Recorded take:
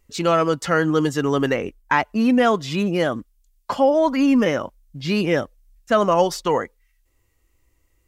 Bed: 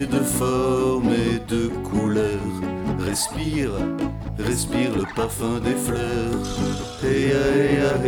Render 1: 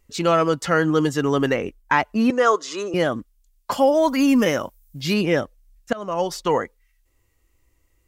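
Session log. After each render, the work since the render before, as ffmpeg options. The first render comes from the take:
-filter_complex "[0:a]asettb=1/sr,asplit=3[a][b][c];[a]atrim=end=2.304[d];[b]atrim=start=2.3:end=2.94,asetpts=PTS-STARTPTS,afade=t=in:d=0.004:c=qsin,afade=t=out:st=0.636:d=0.004:c=qsin,highpass=f=350:w=0.5412,highpass=f=350:w=1.3066,equalizer=f=450:t=q:w=4:g=3,equalizer=f=740:t=q:w=4:g=-7,equalizer=f=1.2k:t=q:w=4:g=8,equalizer=f=2.4k:t=q:w=4:g=-8,equalizer=f=3.4k:t=q:w=4:g=-5,equalizer=f=6.5k:t=q:w=4:g=8,lowpass=f=9.5k:w=0.5412,lowpass=f=9.5k:w=1.3066[e];[c]atrim=start=2.936[f];[d][e]acrossfade=d=0.004:c1=hsin:c2=qsin[g];[g][f]acrossfade=d=0.004:c1=qsin:c2=hsin,asettb=1/sr,asplit=3[h][i][j];[h]atrim=end=3.714[k];[i]atrim=start=3.71:end=5.14,asetpts=PTS-STARTPTS,afade=t=in:d=0.004:c=qsin,afade=t=out:st=1.426:d=0.004:c=qsin,aemphasis=mode=production:type=50fm[l];[j]atrim=start=5.136[m];[k][l]acrossfade=d=0.004:c1=hsin:c2=qsin[n];[n][m]acrossfade=d=0.004:c1=qsin:c2=hsin,asplit=2[o][p];[o]atrim=end=5.93,asetpts=PTS-STARTPTS,afade=t=out:st=5.926:d=0.004:c=hsin:silence=0.0707946[q];[p]atrim=start=5.93,asetpts=PTS-STARTPTS,afade=t=in:d=0.57:silence=0.0707946[r];[q][r]concat=n=2:v=0:a=1"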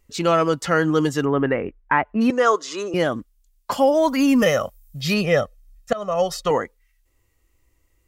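-filter_complex "[0:a]asplit=3[a][b][c];[a]afade=t=out:st=1.24:d=0.02[d];[b]lowpass=f=2.3k:w=0.5412,lowpass=f=2.3k:w=1.3066,afade=t=in:st=1.24:d=0.02,afade=t=out:st=2.2:d=0.02[e];[c]afade=t=in:st=2.2:d=0.02[f];[d][e][f]amix=inputs=3:normalize=0,asettb=1/sr,asplit=3[g][h][i];[g]atrim=end=4.424[j];[h]atrim=start=4.42:end=6.51,asetpts=PTS-STARTPTS,afade=t=in:d=0.004:c=qsin,afade=t=out:st=2.086:d=0.004:c=qsin,aecho=1:1:1.6:0.78,atrim=end_sample=92169[k];[i]atrim=start=6.506[l];[j][k]acrossfade=d=0.004:c1=hsin:c2=qsin[m];[m][l]acrossfade=d=0.004:c1=qsin:c2=hsin"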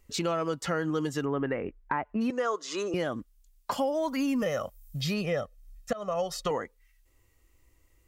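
-filter_complex "[0:a]acrossover=split=1300[a][b];[b]alimiter=limit=-20.5dB:level=0:latency=1[c];[a][c]amix=inputs=2:normalize=0,acompressor=threshold=-30dB:ratio=3"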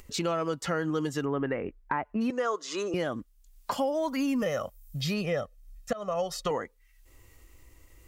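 -af "acompressor=mode=upward:threshold=-43dB:ratio=2.5"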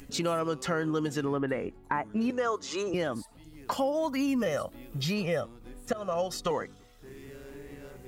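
-filter_complex "[1:a]volume=-27.5dB[a];[0:a][a]amix=inputs=2:normalize=0"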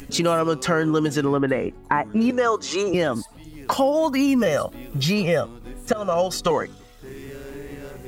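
-af "volume=9dB"

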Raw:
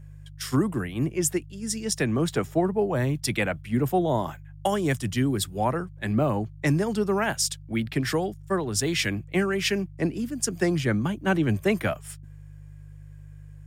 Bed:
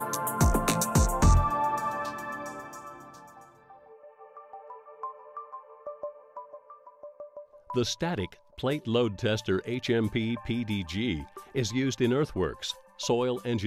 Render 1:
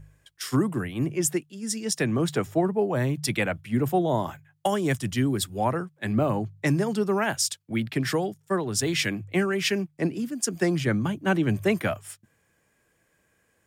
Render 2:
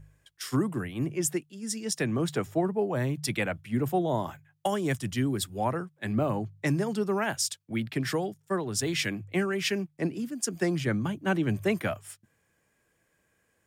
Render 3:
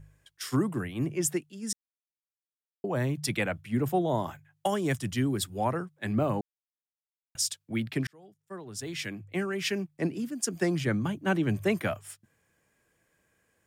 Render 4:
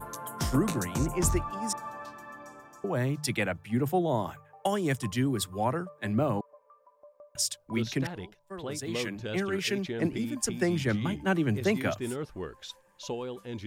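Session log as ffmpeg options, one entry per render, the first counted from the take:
-af "bandreject=f=50:t=h:w=4,bandreject=f=100:t=h:w=4,bandreject=f=150:t=h:w=4"
-af "volume=-3.5dB"
-filter_complex "[0:a]asplit=6[a][b][c][d][e][f];[a]atrim=end=1.73,asetpts=PTS-STARTPTS,afade=t=out:st=1.726:d=0.004:c=hsin[g];[b]atrim=start=1.73:end=2.84,asetpts=PTS-STARTPTS,volume=0[h];[c]atrim=start=2.84:end=6.41,asetpts=PTS-STARTPTS,afade=t=in:d=0.004:c=hsin,afade=t=out:st=3.566:d=0.004:c=hsin[i];[d]atrim=start=6.41:end=7.35,asetpts=PTS-STARTPTS,volume=0[j];[e]atrim=start=7.35:end=8.07,asetpts=PTS-STARTPTS,afade=t=in:d=0.004:c=hsin,afade=t=out:st=0.716:d=0.004:c=hsin[k];[f]atrim=start=8.07,asetpts=PTS-STARTPTS,afade=t=in:d=1.96[l];[g][h][i][j][k][l]concat=n=6:v=0:a=1"
-filter_complex "[1:a]volume=-9dB[a];[0:a][a]amix=inputs=2:normalize=0"

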